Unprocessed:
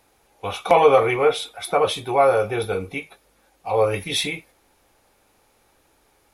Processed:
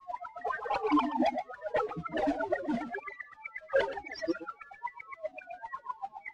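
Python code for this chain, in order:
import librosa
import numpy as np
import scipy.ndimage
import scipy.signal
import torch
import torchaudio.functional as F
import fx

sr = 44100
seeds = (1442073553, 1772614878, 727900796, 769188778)

p1 = fx.spec_expand(x, sr, power=3.7)
p2 = fx.env_lowpass_down(p1, sr, base_hz=980.0, full_db=-16.0)
p3 = p2 + 10.0 ** (-30.0 / 20.0) * np.sin(2.0 * np.pi * 1200.0 * np.arange(len(p2)) / sr)
p4 = fx.filter_lfo_bandpass(p3, sr, shape='sine', hz=3.9, low_hz=340.0, high_hz=3300.0, q=7.0)
p5 = fx.small_body(p4, sr, hz=(270.0, 460.0), ring_ms=45, db=8)
p6 = fx.mod_noise(p5, sr, seeds[0], snr_db=17)
p7 = fx.fold_sine(p6, sr, drive_db=19, ceiling_db=-4.0)
p8 = p6 + (p7 * 10.0 ** (-5.5 / 20.0))
p9 = fx.granulator(p8, sr, seeds[1], grain_ms=100.0, per_s=20.0, spray_ms=24.0, spread_st=12)
p10 = fx.spacing_loss(p9, sr, db_at_10k=30)
p11 = p10 + 10.0 ** (-11.5 / 20.0) * np.pad(p10, (int(124 * sr / 1000.0), 0))[:len(p10)]
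p12 = fx.comb_cascade(p11, sr, direction='falling', hz=0.95)
y = p12 * 10.0 ** (-7.0 / 20.0)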